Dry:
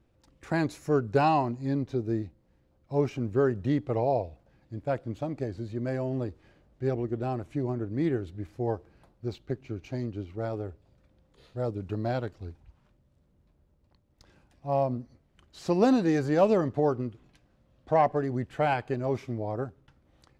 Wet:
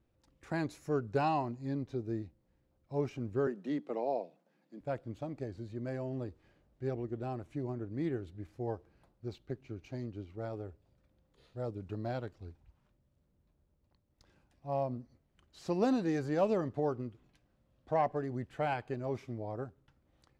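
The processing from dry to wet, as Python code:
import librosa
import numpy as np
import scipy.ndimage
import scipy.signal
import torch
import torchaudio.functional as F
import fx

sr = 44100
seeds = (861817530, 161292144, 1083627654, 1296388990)

y = fx.steep_highpass(x, sr, hz=160.0, slope=72, at=(3.47, 4.81))
y = y * 10.0 ** (-7.5 / 20.0)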